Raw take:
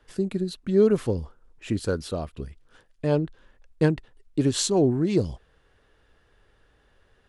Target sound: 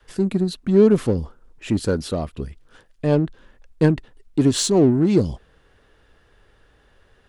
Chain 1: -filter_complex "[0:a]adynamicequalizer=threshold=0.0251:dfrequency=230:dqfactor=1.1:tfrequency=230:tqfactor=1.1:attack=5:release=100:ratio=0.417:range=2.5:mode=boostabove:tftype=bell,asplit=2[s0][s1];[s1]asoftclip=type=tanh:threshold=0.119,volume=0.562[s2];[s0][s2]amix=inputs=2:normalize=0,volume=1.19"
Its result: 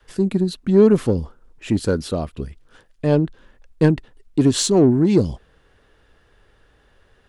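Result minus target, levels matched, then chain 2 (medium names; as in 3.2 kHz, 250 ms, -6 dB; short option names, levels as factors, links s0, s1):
saturation: distortion -5 dB
-filter_complex "[0:a]adynamicequalizer=threshold=0.0251:dfrequency=230:dqfactor=1.1:tfrequency=230:tqfactor=1.1:attack=5:release=100:ratio=0.417:range=2.5:mode=boostabove:tftype=bell,asplit=2[s0][s1];[s1]asoftclip=type=tanh:threshold=0.0422,volume=0.562[s2];[s0][s2]amix=inputs=2:normalize=0,volume=1.19"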